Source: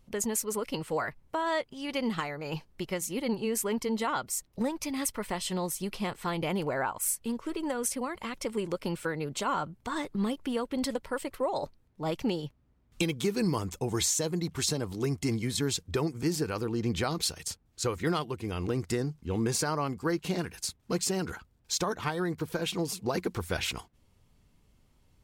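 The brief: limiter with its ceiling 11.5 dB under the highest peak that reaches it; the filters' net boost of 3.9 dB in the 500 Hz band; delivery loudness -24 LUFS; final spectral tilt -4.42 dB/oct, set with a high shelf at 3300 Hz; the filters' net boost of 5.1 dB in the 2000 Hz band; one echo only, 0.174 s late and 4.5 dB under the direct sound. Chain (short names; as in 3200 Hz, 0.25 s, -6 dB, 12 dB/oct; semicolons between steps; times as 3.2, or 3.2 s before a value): bell 500 Hz +4.5 dB; bell 2000 Hz +8 dB; high shelf 3300 Hz -5.5 dB; limiter -24.5 dBFS; echo 0.174 s -4.5 dB; gain +9 dB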